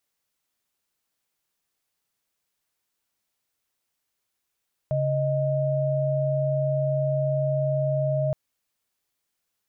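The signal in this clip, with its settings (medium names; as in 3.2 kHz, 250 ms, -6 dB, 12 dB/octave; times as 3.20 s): chord C#3/D#5 sine, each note -24 dBFS 3.42 s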